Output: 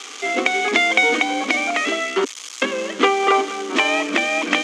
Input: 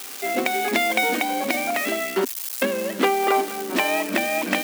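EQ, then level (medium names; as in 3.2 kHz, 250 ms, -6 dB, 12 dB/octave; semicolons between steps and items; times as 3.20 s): cabinet simulation 260–7400 Hz, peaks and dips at 290 Hz +6 dB, 460 Hz +6 dB, 1.2 kHz +9 dB, 2.2 kHz +6 dB, 3.2 kHz +8 dB, 6.5 kHz +7 dB; band-stop 560 Hz, Q 12; 0.0 dB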